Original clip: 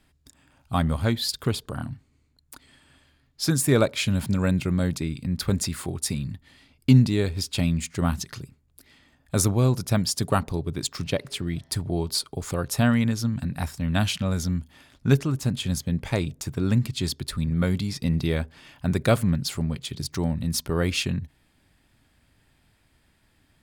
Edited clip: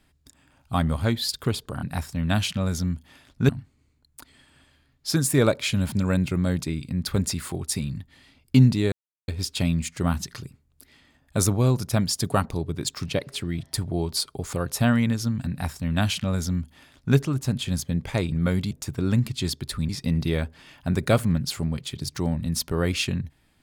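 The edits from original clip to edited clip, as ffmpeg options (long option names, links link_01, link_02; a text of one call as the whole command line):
ffmpeg -i in.wav -filter_complex "[0:a]asplit=7[link_01][link_02][link_03][link_04][link_05][link_06][link_07];[link_01]atrim=end=1.832[link_08];[link_02]atrim=start=13.478:end=15.142[link_09];[link_03]atrim=start=1.828:end=7.26,asetpts=PTS-STARTPTS,afade=type=out:start_time=5.428:duration=0.004:curve=hsin,apad=pad_dur=0.36[link_10];[link_04]atrim=start=7.26:end=16.302,asetpts=PTS-STARTPTS,afade=type=in:duration=0.004:curve=hsin[link_11];[link_05]atrim=start=17.478:end=17.872[link_12];[link_06]atrim=start=16.298:end=17.482[link_13];[link_07]atrim=start=17.868[link_14];[link_08][link_09]acrossfade=duration=0.004:curve1=hsin:curve2=hsin[link_15];[link_10][link_11]concat=n=2:v=0:a=1[link_16];[link_15][link_16]acrossfade=duration=0.004:curve1=hsin:curve2=hsin[link_17];[link_17][link_12]acrossfade=duration=0.004:curve1=hsin:curve2=hsin[link_18];[link_18][link_13]acrossfade=duration=0.004:curve1=hsin:curve2=hsin[link_19];[link_19][link_14]acrossfade=duration=0.004:curve1=hsin:curve2=hsin" out.wav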